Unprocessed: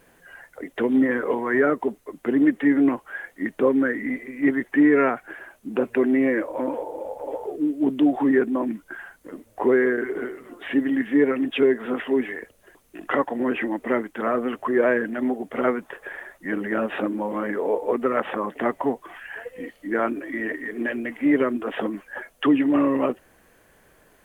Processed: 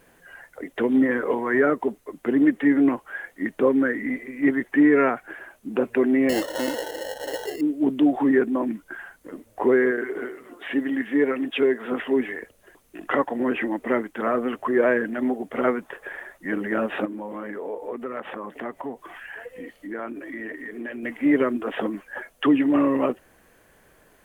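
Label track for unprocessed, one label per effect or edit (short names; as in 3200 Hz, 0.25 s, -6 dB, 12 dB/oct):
6.290000	7.610000	sample-rate reducer 2400 Hz
9.910000	11.920000	low shelf 210 Hz -8 dB
17.050000	21.030000	compressor 2:1, threshold -35 dBFS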